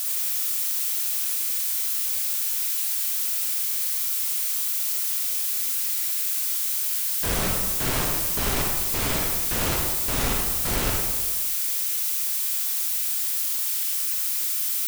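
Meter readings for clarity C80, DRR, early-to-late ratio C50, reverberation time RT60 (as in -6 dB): 2.5 dB, -1.0 dB, 0.0 dB, 1.4 s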